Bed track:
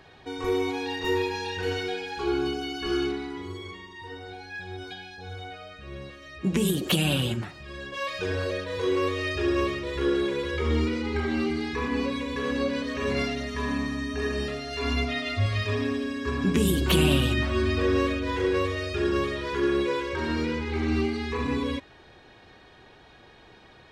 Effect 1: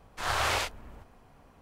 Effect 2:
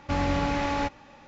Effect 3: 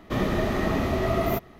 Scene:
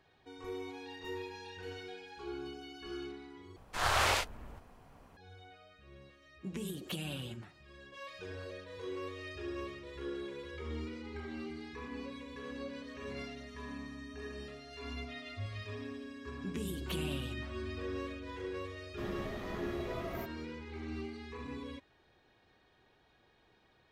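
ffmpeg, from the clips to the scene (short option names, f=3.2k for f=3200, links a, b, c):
-filter_complex "[0:a]volume=-16dB,asplit=2[a][b];[a]atrim=end=3.564[c];[1:a]atrim=end=1.61,asetpts=PTS-STARTPTS,volume=-1dB[d];[b]atrim=start=5.166[e];[3:a]atrim=end=1.59,asetpts=PTS-STARTPTS,volume=-17dB,afade=t=in:d=0.004:c=hsin,afade=t=out:st=1.586:d=0.004:c=hsin,adelay=18870[f];[c][d]acrossfade=d=0.004:c1=hsin:c2=hsin[g];[g][e]acrossfade=d=0.004:c1=hsin:c2=hsin[h];[h][f]amix=inputs=2:normalize=0"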